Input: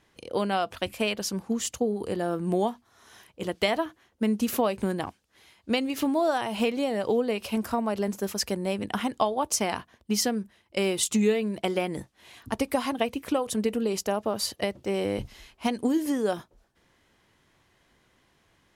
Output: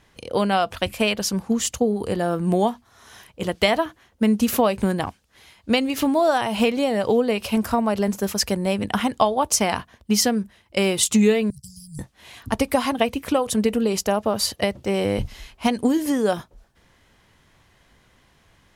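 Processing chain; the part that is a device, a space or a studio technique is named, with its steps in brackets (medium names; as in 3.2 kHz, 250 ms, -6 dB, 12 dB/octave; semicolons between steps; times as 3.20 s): low shelf boost with a cut just above (bass shelf 88 Hz +7.5 dB; peaking EQ 340 Hz -4 dB 0.58 oct); 11.50–11.99 s: Chebyshev band-stop 150–5000 Hz, order 5; trim +6.5 dB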